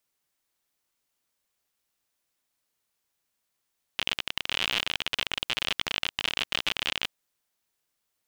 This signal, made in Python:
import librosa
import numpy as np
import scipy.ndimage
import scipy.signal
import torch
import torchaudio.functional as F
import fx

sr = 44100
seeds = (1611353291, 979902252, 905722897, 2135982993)

y = fx.geiger_clicks(sr, seeds[0], length_s=3.11, per_s=54.0, level_db=-10.5)